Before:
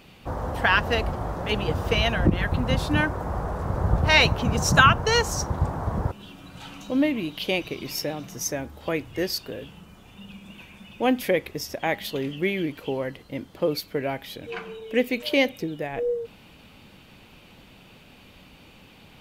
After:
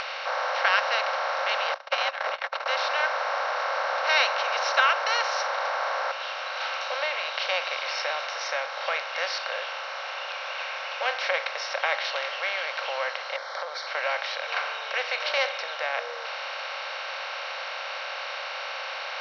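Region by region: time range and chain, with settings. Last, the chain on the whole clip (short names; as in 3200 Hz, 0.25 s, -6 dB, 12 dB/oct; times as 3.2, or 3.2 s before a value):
1.74–2.66 gate -22 dBFS, range -57 dB + air absorption 53 m + frequency shift +89 Hz
13.36–13.87 Butterworth band-stop 2700 Hz, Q 1.4 + compressor, threshold -34 dBFS
whole clip: per-bin compression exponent 0.4; Chebyshev band-pass 540–5500 Hz, order 5; upward compressor, threshold -23 dBFS; gain -7.5 dB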